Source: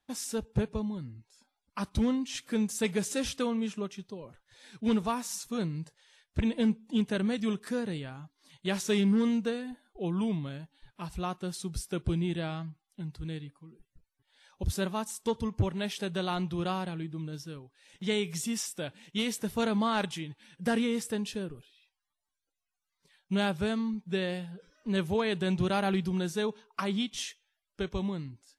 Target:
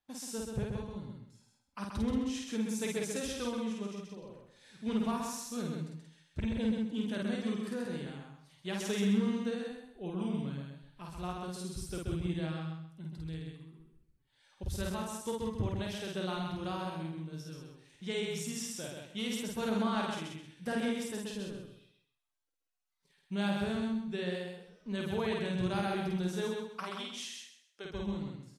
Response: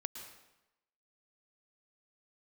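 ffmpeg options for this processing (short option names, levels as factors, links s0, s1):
-filter_complex "[0:a]asplit=3[s0][s1][s2];[s0]afade=t=out:st=26.83:d=0.02[s3];[s1]highpass=460,afade=t=in:st=26.83:d=0.02,afade=t=out:st=27.84:d=0.02[s4];[s2]afade=t=in:st=27.84:d=0.02[s5];[s3][s4][s5]amix=inputs=3:normalize=0,asplit=2[s6][s7];[s7]adelay=50,volume=0.794[s8];[s6][s8]amix=inputs=2:normalize=0,aecho=1:1:130|260|390|520:0.631|0.17|0.046|0.0124,volume=0.398"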